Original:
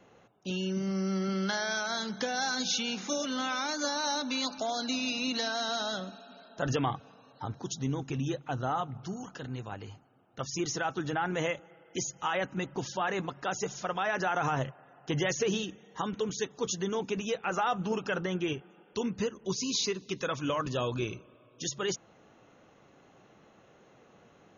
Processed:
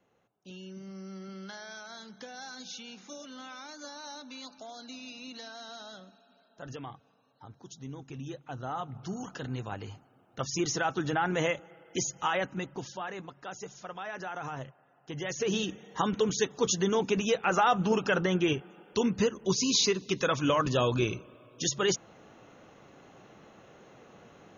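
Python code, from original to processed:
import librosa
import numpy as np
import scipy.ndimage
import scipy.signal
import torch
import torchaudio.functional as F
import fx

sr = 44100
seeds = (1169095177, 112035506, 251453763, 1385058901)

y = fx.gain(x, sr, db=fx.line((7.47, -12.5), (8.66, -5.5), (9.22, 2.5), (12.25, 2.5), (13.2, -8.5), (15.15, -8.5), (15.7, 5.0)))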